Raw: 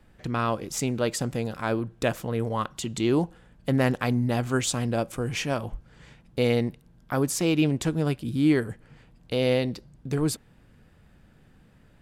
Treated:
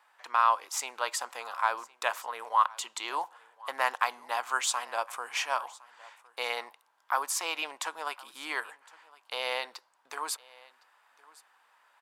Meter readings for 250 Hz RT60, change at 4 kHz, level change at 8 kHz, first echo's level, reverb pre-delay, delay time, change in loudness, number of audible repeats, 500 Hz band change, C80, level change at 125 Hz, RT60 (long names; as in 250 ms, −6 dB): no reverb audible, −1.0 dB, −1.5 dB, −22.5 dB, no reverb audible, 1,061 ms, −5.0 dB, 1, −13.0 dB, no reverb audible, below −40 dB, no reverb audible